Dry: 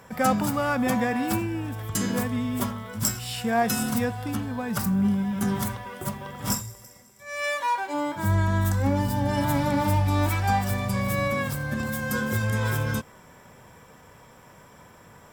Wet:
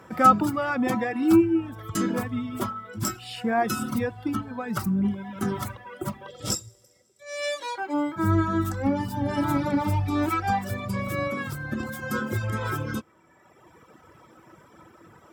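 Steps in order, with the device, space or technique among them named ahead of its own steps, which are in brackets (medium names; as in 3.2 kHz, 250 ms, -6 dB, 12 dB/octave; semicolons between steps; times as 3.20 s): 6.28–7.78 s: ten-band graphic EQ 250 Hz -8 dB, 500 Hz +8 dB, 1 kHz -10 dB, 2 kHz -4 dB, 4 kHz +8 dB, 8 kHz +7 dB, 16 kHz -4 dB; inside a helmet (treble shelf 5.5 kHz -8 dB; small resonant body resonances 330/1300 Hz, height 15 dB, ringing for 90 ms); reverb removal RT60 1.5 s; high-pass 60 Hz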